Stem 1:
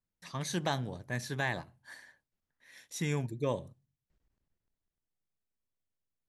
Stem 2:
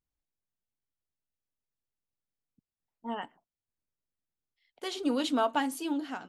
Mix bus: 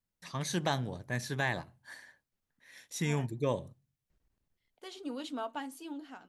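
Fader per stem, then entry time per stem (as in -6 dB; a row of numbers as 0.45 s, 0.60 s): +1.0 dB, -10.5 dB; 0.00 s, 0.00 s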